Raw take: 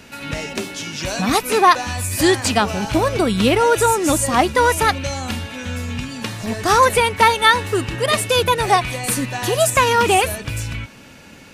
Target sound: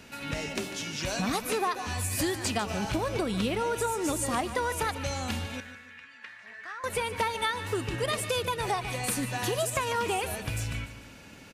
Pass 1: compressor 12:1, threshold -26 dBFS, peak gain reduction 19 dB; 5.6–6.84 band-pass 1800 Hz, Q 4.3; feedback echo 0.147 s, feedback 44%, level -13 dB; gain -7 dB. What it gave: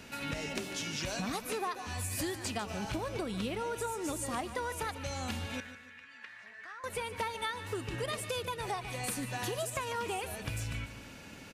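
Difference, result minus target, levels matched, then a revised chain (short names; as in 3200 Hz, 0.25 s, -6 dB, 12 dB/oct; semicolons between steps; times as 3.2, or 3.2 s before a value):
compressor: peak gain reduction +7 dB
compressor 12:1, threshold -18.5 dBFS, peak gain reduction 12 dB; 5.6–6.84 band-pass 1800 Hz, Q 4.3; feedback echo 0.147 s, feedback 44%, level -13 dB; gain -7 dB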